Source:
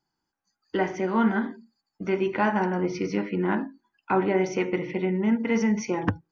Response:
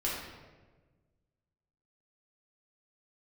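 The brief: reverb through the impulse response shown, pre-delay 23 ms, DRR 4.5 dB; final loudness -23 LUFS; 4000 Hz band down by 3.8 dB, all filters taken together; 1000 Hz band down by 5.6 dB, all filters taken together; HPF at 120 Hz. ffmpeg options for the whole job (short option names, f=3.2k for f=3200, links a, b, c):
-filter_complex "[0:a]highpass=120,equalizer=f=1k:t=o:g=-7,equalizer=f=4k:t=o:g=-5.5,asplit=2[a][b];[1:a]atrim=start_sample=2205,adelay=23[c];[b][c]afir=irnorm=-1:irlink=0,volume=-10.5dB[d];[a][d]amix=inputs=2:normalize=0,volume=2.5dB"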